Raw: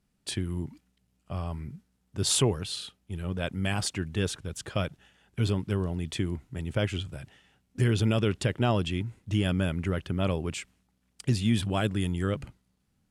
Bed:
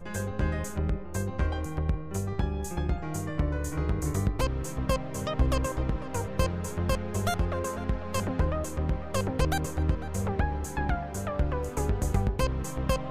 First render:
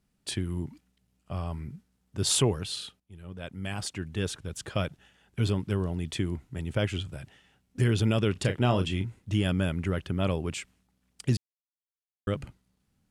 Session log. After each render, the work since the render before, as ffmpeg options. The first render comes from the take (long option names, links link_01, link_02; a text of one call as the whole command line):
ffmpeg -i in.wav -filter_complex "[0:a]asettb=1/sr,asplit=3[link_01][link_02][link_03];[link_01]atrim=end=8.324[link_04];[link_02]atrim=start=8.32:end=9.06,asetpts=PTS-STARTPTS,afade=type=in:duration=0.004:curve=qsin,afade=type=out:start_time=0.736:duration=0.004:curve=qsin,asplit=2[link_05][link_06];[link_06]adelay=32,volume=-8.5dB[link_07];[link_05][link_07]amix=inputs=2:normalize=0,atrim=end_sample=32634[link_08];[link_03]atrim=start=9.056[link_09];[link_04][link_08]acrossfade=duration=0.004:curve1=hsin:curve2=qsin[link_10];[link_10][link_09]acrossfade=duration=0.004:curve1=qsin:curve2=hsin,asplit=4[link_11][link_12][link_13][link_14];[link_11]atrim=end=3,asetpts=PTS-STARTPTS,afade=type=out:start_time=2.996:duration=0.004:curve=hsin:silence=0.16788[link_15];[link_12]atrim=start=3:end=11.37,asetpts=PTS-STARTPTS,afade=type=in:duration=1.64:silence=0.16788,afade=type=out:start_time=8.366:duration=0.004:curve=hsin[link_16];[link_13]atrim=start=11.37:end=12.27,asetpts=PTS-STARTPTS,volume=0[link_17];[link_14]atrim=start=12.27,asetpts=PTS-STARTPTS,afade=type=in:duration=0.004:curve=hsin[link_18];[link_15][link_16][link_17][link_18]concat=n=4:v=0:a=1" out.wav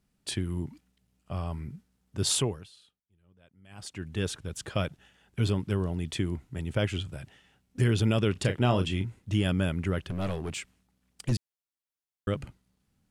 ffmpeg -i in.wav -filter_complex "[0:a]asettb=1/sr,asplit=3[link_01][link_02][link_03];[link_01]atrim=end=10.064[link_04];[link_02]atrim=start=10.06:end=11.32,asetpts=PTS-STARTPTS,afade=type=in:duration=0.004:curve=qsin,afade=type=out:start_time=1.256:duration=0.004:curve=qsin,aeval=exprs='clip(val(0),-1,0.0355)':channel_layout=same[link_05];[link_03]atrim=start=11.316[link_06];[link_04][link_05]acrossfade=duration=0.004:curve1=hsin:curve2=qsin[link_07];[link_07][link_06]acrossfade=duration=0.004:curve1=qsin:curve2=hsin,asplit=3[link_08][link_09][link_10];[link_08]atrim=end=2.71,asetpts=PTS-STARTPTS,afade=type=out:start_time=2.25:duration=0.46:silence=0.0891251[link_11];[link_09]atrim=start=2.71:end=3.68,asetpts=PTS-STARTPTS,volume=-21dB[link_12];[link_10]atrim=start=3.68,asetpts=PTS-STARTPTS,afade=type=in:duration=0.46:silence=0.0891251[link_13];[link_11][link_12][link_13]concat=n=3:v=0:a=1" out.wav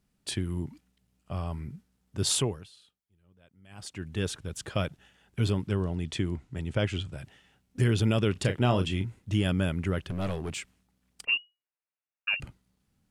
ffmpeg -i in.wav -filter_complex "[0:a]asettb=1/sr,asplit=3[link_01][link_02][link_03];[link_01]atrim=end=5.684[link_04];[link_02]atrim=start=5.68:end=7.18,asetpts=PTS-STARTPTS,afade=type=in:duration=0.004:curve=qsin,afade=type=out:start_time=1.496:duration=0.004:curve=qsin,lowpass=8500[link_05];[link_03]atrim=start=7.176[link_06];[link_04][link_05]acrossfade=duration=0.004:curve1=hsin:curve2=qsin[link_07];[link_07][link_06]acrossfade=duration=0.004:curve1=qsin:curve2=hsin,asettb=1/sr,asplit=3[link_08][link_09][link_10];[link_08]atrim=end=11.254[link_11];[link_09]atrim=start=11.25:end=12.4,asetpts=PTS-STARTPTS,afade=type=in:duration=0.004:curve=qsin,afade=type=out:start_time=1.146:duration=0.004:curve=qsin,lowpass=frequency=2500:width_type=q:width=0.5098,lowpass=frequency=2500:width_type=q:width=0.6013,lowpass=frequency=2500:width_type=q:width=0.9,lowpass=frequency=2500:width_type=q:width=2.563,afreqshift=-2900[link_12];[link_10]atrim=start=12.396[link_13];[link_11][link_12]acrossfade=duration=0.004:curve1=hsin:curve2=qsin[link_14];[link_14][link_13]acrossfade=duration=0.004:curve1=qsin:curve2=hsin" out.wav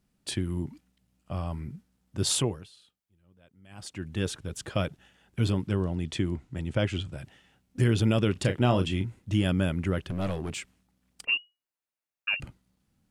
ffmpeg -i in.wav -af "equalizer=frequency=340:width_type=o:width=2.1:gain=2.5,bandreject=frequency=420:width=12" out.wav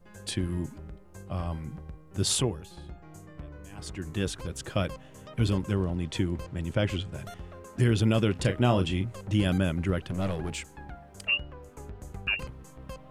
ffmpeg -i in.wav -i bed.wav -filter_complex "[1:a]volume=-15dB[link_01];[0:a][link_01]amix=inputs=2:normalize=0" out.wav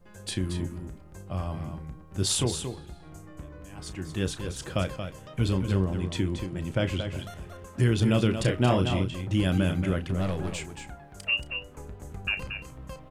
ffmpeg -i in.wav -filter_complex "[0:a]asplit=2[link_01][link_02];[link_02]adelay=32,volume=-12dB[link_03];[link_01][link_03]amix=inputs=2:normalize=0,aecho=1:1:228:0.398" out.wav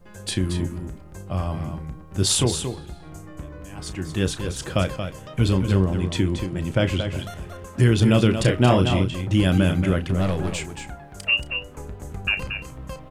ffmpeg -i in.wav -af "volume=6dB" out.wav